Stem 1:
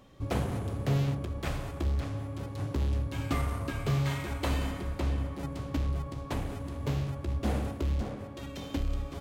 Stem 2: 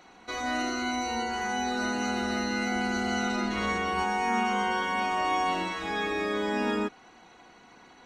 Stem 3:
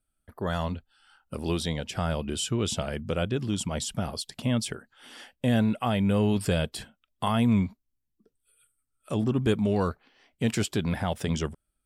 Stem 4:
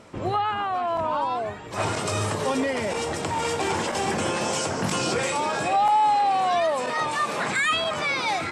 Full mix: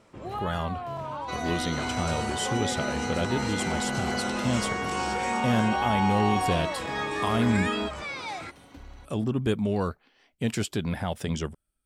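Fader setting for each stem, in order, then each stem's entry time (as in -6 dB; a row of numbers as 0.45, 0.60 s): -15.0, -2.0, -1.5, -10.0 dB; 0.00, 1.00, 0.00, 0.00 s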